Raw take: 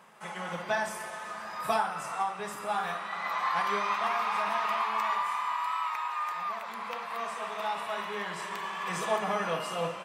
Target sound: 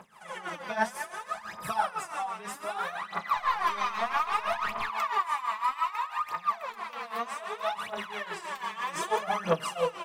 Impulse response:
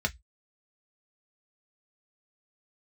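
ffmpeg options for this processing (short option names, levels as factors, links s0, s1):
-filter_complex "[0:a]asettb=1/sr,asplit=3[s0][s1][s2];[s0]atrim=end=3.364[s3];[s1]atrim=start=3.36:end=4.89,asetpts=PTS-STARTPTS,afade=t=in:d=0.004:c=qsin,afade=t=out:st=1.526:d=0.004:c=qsin,aeval=exprs='0.133*(cos(1*acos(clip(val(0)/0.133,-1,1)))-cos(1*PI/2))+0.00473*(cos(4*acos(clip(val(0)/0.133,-1,1)))-cos(4*PI/2))':c=same[s4];[s2]atrim=start=4.886[s5];[s3][s4]acrossfade=d=0.004:c1=hsin:c2=qsin[s6];[s6][s5]acrossfade=d=0.004:c1=qsin:c2=hsin,tremolo=f=6:d=0.77,aphaser=in_gain=1:out_gain=1:delay=4.7:decay=0.75:speed=0.63:type=triangular"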